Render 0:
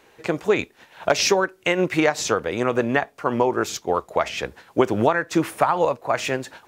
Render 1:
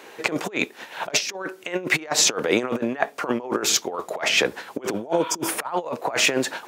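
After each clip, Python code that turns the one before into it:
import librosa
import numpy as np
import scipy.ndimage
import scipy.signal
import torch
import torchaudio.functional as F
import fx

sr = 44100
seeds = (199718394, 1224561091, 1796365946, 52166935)

y = fx.spec_repair(x, sr, seeds[0], start_s=4.99, length_s=0.47, low_hz=920.0, high_hz=4600.0, source='before')
y = fx.over_compress(y, sr, threshold_db=-27.0, ratio=-0.5)
y = scipy.signal.sosfilt(scipy.signal.butter(2, 230.0, 'highpass', fs=sr, output='sos'), y)
y = y * 10.0 ** (4.5 / 20.0)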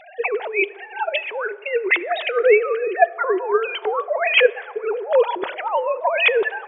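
y = fx.sine_speech(x, sr)
y = fx.rev_plate(y, sr, seeds[1], rt60_s=2.9, hf_ratio=0.25, predelay_ms=0, drr_db=18.5)
y = y * 10.0 ** (4.5 / 20.0)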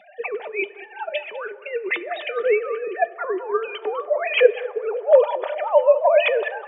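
y = fx.comb_fb(x, sr, f0_hz=600.0, decay_s=0.15, harmonics='all', damping=0.0, mix_pct=70)
y = fx.filter_sweep_highpass(y, sr, from_hz=200.0, to_hz=600.0, start_s=3.35, end_s=5.05, q=4.8)
y = y + 10.0 ** (-17.0 / 20.0) * np.pad(y, (int(200 * sr / 1000.0), 0))[:len(y)]
y = y * 10.0 ** (2.5 / 20.0)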